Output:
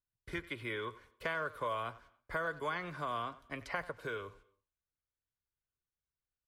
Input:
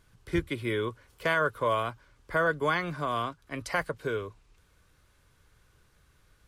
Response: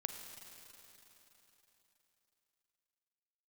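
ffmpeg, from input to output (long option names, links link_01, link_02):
-filter_complex "[0:a]agate=range=-32dB:threshold=-52dB:ratio=16:detection=peak,acrossover=split=630|3600[link_01][link_02][link_03];[link_01]acompressor=threshold=-41dB:ratio=4[link_04];[link_02]acompressor=threshold=-32dB:ratio=4[link_05];[link_03]acompressor=threshold=-56dB:ratio=4[link_06];[link_04][link_05][link_06]amix=inputs=3:normalize=0,asplit=2[link_07][link_08];[link_08]adelay=90,highpass=300,lowpass=3400,asoftclip=type=hard:threshold=-28.5dB,volume=-16dB[link_09];[link_07][link_09]amix=inputs=2:normalize=0,asplit=2[link_10][link_11];[1:a]atrim=start_sample=2205,afade=type=out:start_time=0.37:duration=0.01,atrim=end_sample=16758,lowpass=6100[link_12];[link_11][link_12]afir=irnorm=-1:irlink=0,volume=-14.5dB[link_13];[link_10][link_13]amix=inputs=2:normalize=0,volume=-4.5dB"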